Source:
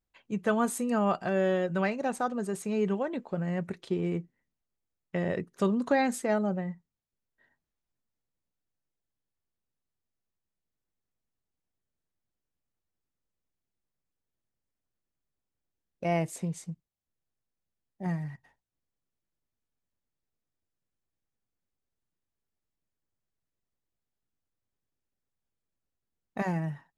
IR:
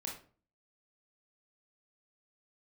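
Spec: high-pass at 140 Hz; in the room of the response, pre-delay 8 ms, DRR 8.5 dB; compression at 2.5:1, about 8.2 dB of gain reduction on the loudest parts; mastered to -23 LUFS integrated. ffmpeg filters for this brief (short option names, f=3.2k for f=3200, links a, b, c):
-filter_complex "[0:a]highpass=140,acompressor=threshold=-34dB:ratio=2.5,asplit=2[a][b];[1:a]atrim=start_sample=2205,adelay=8[c];[b][c]afir=irnorm=-1:irlink=0,volume=-8dB[d];[a][d]amix=inputs=2:normalize=0,volume=14dB"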